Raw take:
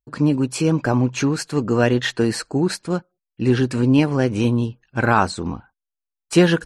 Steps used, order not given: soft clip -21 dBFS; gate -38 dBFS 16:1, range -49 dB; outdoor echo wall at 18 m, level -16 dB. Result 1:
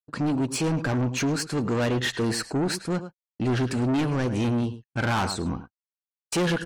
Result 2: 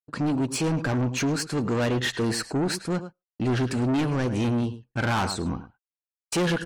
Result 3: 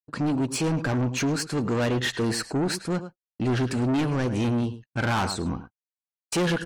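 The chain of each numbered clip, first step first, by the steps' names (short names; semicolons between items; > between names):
outdoor echo > soft clip > gate; gate > outdoor echo > soft clip; outdoor echo > gate > soft clip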